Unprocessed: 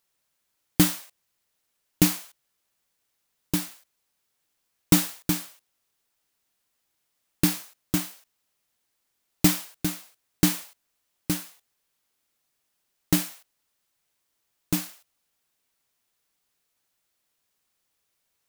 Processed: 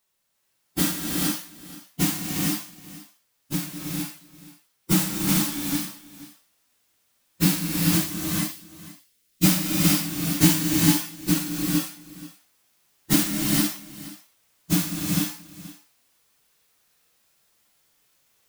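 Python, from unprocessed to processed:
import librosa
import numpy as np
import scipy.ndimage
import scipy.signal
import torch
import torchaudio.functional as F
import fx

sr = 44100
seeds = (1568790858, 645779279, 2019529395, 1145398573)

p1 = fx.phase_scramble(x, sr, seeds[0], window_ms=50)
p2 = fx.peak_eq(p1, sr, hz=870.0, db=-15.0, octaves=1.4, at=(8.06, 9.45))
p3 = fx.rider(p2, sr, range_db=10, speed_s=0.5)
p4 = p2 + (p3 * librosa.db_to_amplitude(3.0))
p5 = fx.hpss(p4, sr, part='percussive', gain_db=-11)
p6 = p5 + fx.echo_single(p5, sr, ms=478, db=-17.5, dry=0)
y = fx.rev_gated(p6, sr, seeds[1], gate_ms=480, shape='rising', drr_db=-1.0)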